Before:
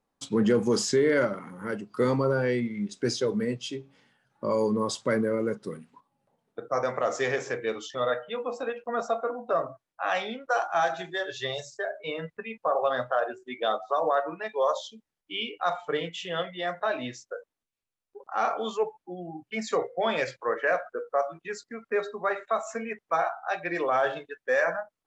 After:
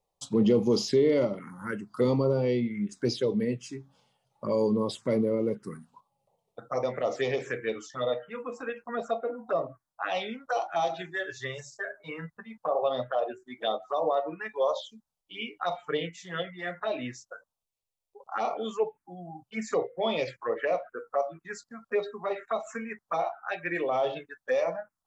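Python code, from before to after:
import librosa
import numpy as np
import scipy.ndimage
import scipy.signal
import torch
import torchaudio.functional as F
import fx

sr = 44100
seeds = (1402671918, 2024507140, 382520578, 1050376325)

y = fx.env_phaser(x, sr, low_hz=260.0, high_hz=1600.0, full_db=-23.0)
y = y * 10.0 ** (1.0 / 20.0)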